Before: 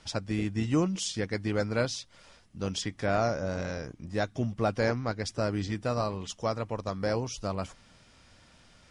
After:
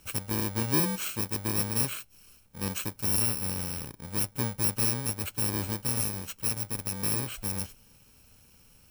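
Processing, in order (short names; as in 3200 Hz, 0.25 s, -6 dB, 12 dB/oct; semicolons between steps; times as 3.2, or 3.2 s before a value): FFT order left unsorted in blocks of 64 samples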